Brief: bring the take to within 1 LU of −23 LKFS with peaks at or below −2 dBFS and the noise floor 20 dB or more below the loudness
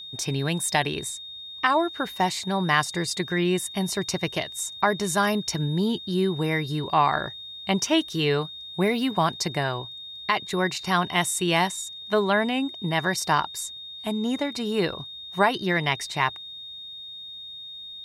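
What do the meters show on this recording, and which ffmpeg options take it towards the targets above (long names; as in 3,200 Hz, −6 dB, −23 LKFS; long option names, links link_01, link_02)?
interfering tone 3,700 Hz; level of the tone −37 dBFS; integrated loudness −25.5 LKFS; sample peak −7.0 dBFS; target loudness −23.0 LKFS
→ -af "bandreject=frequency=3700:width=30"
-af "volume=2.5dB"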